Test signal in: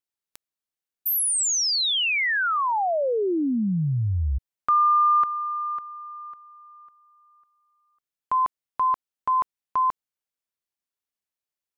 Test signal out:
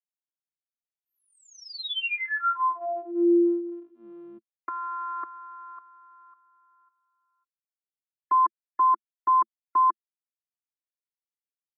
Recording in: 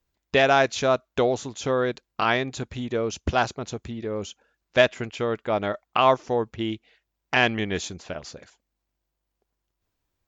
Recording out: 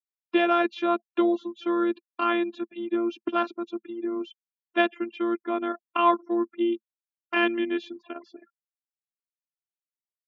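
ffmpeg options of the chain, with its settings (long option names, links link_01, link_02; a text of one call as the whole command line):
ffmpeg -i in.wav -af "afftfilt=real='re*gte(hypot(re,im),0.00891)':imag='im*gte(hypot(re,im),0.00891)':win_size=1024:overlap=0.75,afftfilt=real='hypot(re,im)*cos(PI*b)':imag='0':win_size=512:overlap=0.75,highpass=frequency=210:width=0.5412,highpass=frequency=210:width=1.3066,equalizer=frequency=220:width_type=q:width=4:gain=9,equalizer=frequency=340:width_type=q:width=4:gain=5,equalizer=frequency=690:width_type=q:width=4:gain=-5,equalizer=frequency=1200:width_type=q:width=4:gain=6,equalizer=frequency=2000:width_type=q:width=4:gain=-5,lowpass=frequency=3300:width=0.5412,lowpass=frequency=3300:width=1.3066" out.wav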